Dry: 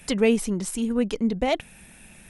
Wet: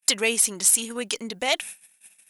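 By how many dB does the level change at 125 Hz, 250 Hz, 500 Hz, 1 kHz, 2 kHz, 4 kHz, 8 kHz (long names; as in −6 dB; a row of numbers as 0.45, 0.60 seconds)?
below −10 dB, −12.0 dB, −5.5 dB, −1.0 dB, +6.0 dB, +9.5 dB, +15.0 dB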